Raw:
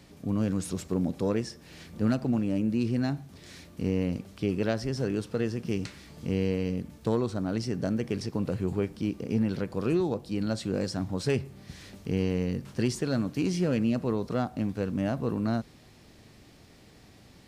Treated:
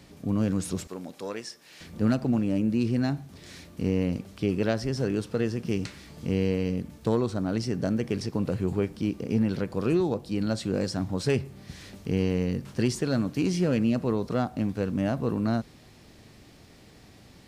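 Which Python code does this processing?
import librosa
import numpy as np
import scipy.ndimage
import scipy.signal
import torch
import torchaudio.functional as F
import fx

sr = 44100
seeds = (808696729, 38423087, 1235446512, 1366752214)

y = fx.highpass(x, sr, hz=1100.0, slope=6, at=(0.87, 1.81))
y = y * 10.0 ** (2.0 / 20.0)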